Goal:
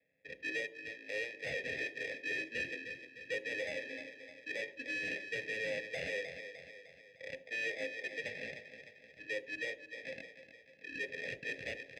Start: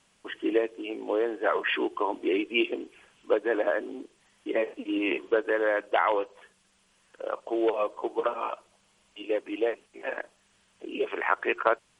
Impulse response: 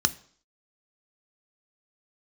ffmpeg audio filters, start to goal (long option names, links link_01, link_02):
-filter_complex "[0:a]asubboost=boost=5.5:cutoff=200,acrusher=samples=31:mix=1:aa=0.000001,adynamicsmooth=sensitivity=6:basefreq=2700,highshelf=frequency=3200:gain=-11,aecho=1:1:304|608|912|1216|1520:0.251|0.126|0.0628|0.0314|0.0157,asettb=1/sr,asplit=3[link_01][link_02][link_03];[link_01]atrim=end=0.674[link_04];[link_02]atrim=start=0.67:end=1.47,asetpts=PTS-STARTPTS,afade=type=in:duration=0.004:curve=qsin,afade=type=out:start_time=0.796:duration=0.004:curve=qsin,aeval=exprs='0.158*(cos(1*acos(clip(val(0)/0.158,-1,1)))-cos(1*PI/2))+0.01*(cos(7*acos(clip(val(0)/0.158,-1,1)))-cos(7*PI/2))':channel_layout=same[link_05];[link_03]atrim=start=1.466[link_06];[link_04][link_05]acrossfade=duration=0.004:curve1=hsin:curve2=qsin[link_07];[link_07][link_06]acrossfade=duration=0.004:curve1=qsin:curve2=hsin,aexciter=amount=4.7:drive=5.3:freq=2000,asoftclip=type=hard:threshold=-22.5dB,asplit=3[link_08][link_09][link_10];[link_08]bandpass=frequency=530:width_type=q:width=8,volume=0dB[link_11];[link_09]bandpass=frequency=1840:width_type=q:width=8,volume=-6dB[link_12];[link_10]bandpass=frequency=2480:width_type=q:width=8,volume=-9dB[link_13];[link_11][link_12][link_13]amix=inputs=3:normalize=0,asplit=2[link_14][link_15];[1:a]atrim=start_sample=2205,lowshelf=frequency=150:gain=4[link_16];[link_15][link_16]afir=irnorm=-1:irlink=0,volume=-11dB[link_17];[link_14][link_17]amix=inputs=2:normalize=0,volume=2.5dB"